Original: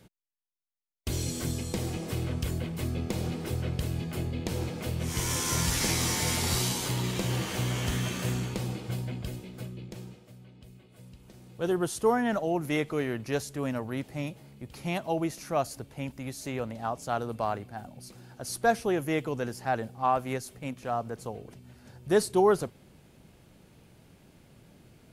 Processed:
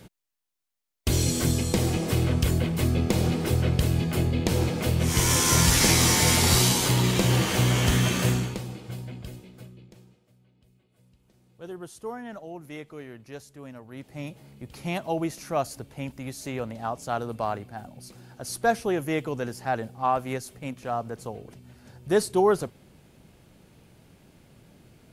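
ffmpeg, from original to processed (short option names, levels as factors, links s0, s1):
-af "volume=10.6,afade=t=out:st=8.23:d=0.4:silence=0.281838,afade=t=out:st=9.31:d=0.74:silence=0.398107,afade=t=in:st=13.87:d=0.62:silence=0.237137"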